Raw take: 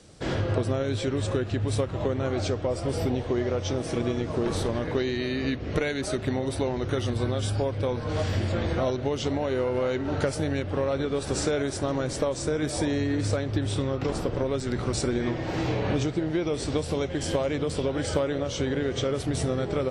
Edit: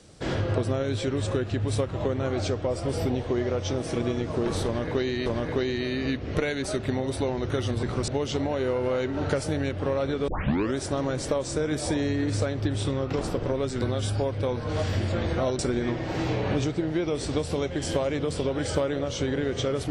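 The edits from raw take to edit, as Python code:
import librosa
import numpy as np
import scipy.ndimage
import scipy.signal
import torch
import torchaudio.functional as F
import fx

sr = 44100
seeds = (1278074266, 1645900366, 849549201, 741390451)

y = fx.edit(x, sr, fx.repeat(start_s=4.65, length_s=0.61, count=2),
    fx.swap(start_s=7.22, length_s=1.77, other_s=14.73, other_length_s=0.25),
    fx.tape_start(start_s=11.19, length_s=0.48), tone=tone)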